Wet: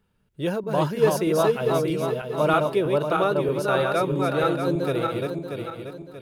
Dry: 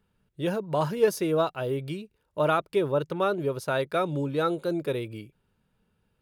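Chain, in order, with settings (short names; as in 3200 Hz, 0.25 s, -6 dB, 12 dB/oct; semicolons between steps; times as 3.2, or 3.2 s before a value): regenerating reverse delay 0.317 s, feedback 61%, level -2.5 dB; gain +2 dB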